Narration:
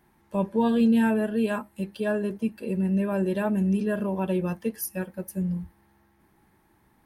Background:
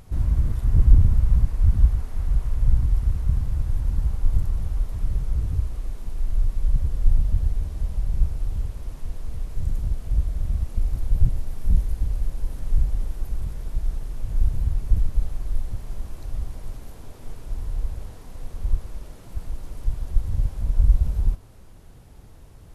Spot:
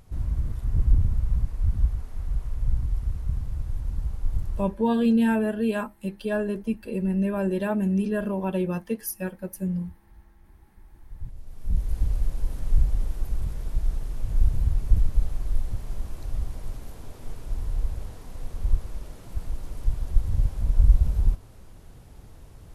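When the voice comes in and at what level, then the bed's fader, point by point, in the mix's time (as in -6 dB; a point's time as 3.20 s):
4.25 s, 0.0 dB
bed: 4.60 s -6 dB
4.86 s -30 dB
10.77 s -30 dB
11.97 s 0 dB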